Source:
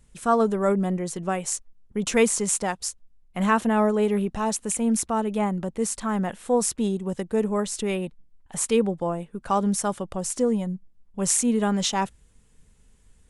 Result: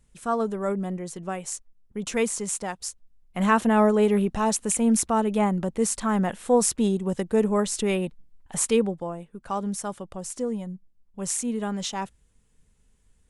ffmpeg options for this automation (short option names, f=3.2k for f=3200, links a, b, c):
-af "volume=2dB,afade=t=in:st=2.67:d=1.15:silence=0.446684,afade=t=out:st=8.57:d=0.51:silence=0.398107"